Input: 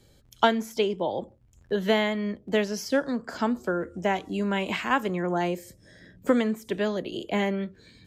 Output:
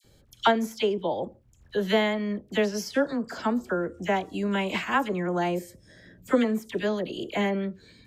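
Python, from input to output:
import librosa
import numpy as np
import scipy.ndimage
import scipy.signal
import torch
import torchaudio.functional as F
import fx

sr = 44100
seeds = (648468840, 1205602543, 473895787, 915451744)

y = fx.dispersion(x, sr, late='lows', ms=44.0, hz=1500.0)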